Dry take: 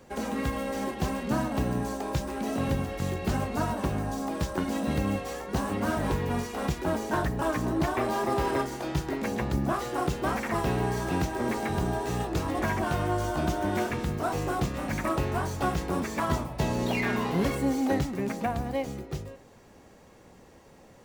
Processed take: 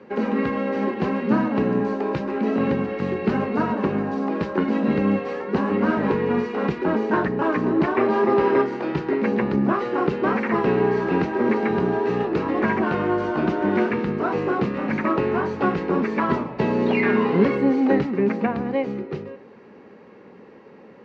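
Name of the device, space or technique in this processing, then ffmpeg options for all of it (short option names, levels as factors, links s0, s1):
kitchen radio: -af "highpass=200,equalizer=f=210:t=q:w=4:g=7,equalizer=f=420:t=q:w=4:g=7,equalizer=f=690:t=q:w=4:g=-7,equalizer=f=3400:t=q:w=4:g=-9,lowpass=f=3500:w=0.5412,lowpass=f=3500:w=1.3066,volume=2.24"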